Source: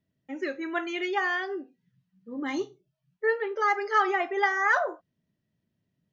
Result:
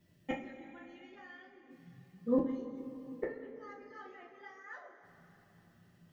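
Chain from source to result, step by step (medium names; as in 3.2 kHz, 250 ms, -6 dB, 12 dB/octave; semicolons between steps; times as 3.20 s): inverted gate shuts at -29 dBFS, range -39 dB; two-slope reverb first 0.28 s, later 3.7 s, from -18 dB, DRR -4.5 dB; trim +7 dB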